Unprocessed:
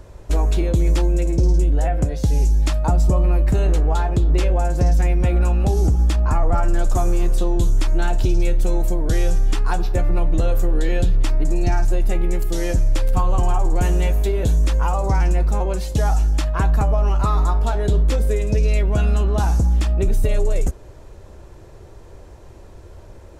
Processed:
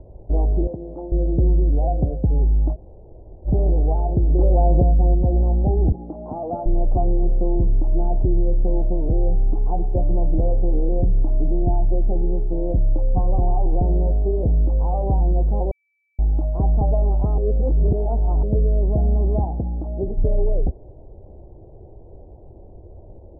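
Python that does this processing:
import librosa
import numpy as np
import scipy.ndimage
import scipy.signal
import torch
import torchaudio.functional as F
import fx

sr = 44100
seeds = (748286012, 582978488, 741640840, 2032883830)

y = fx.highpass(x, sr, hz=680.0, slope=6, at=(0.67, 1.12))
y = fx.env_flatten(y, sr, amount_pct=100, at=(4.39, 5.15))
y = fx.highpass(y, sr, hz=220.0, slope=12, at=(5.92, 6.66))
y = fx.low_shelf(y, sr, hz=110.0, db=-11.0, at=(19.44, 20.18))
y = fx.edit(y, sr, fx.room_tone_fill(start_s=2.74, length_s=0.73, crossfade_s=0.06),
    fx.bleep(start_s=15.71, length_s=0.48, hz=2310.0, db=-7.0),
    fx.reverse_span(start_s=17.38, length_s=1.05), tone=tone)
y = scipy.signal.sosfilt(scipy.signal.ellip(4, 1.0, 60, 770.0, 'lowpass', fs=sr, output='sos'), y)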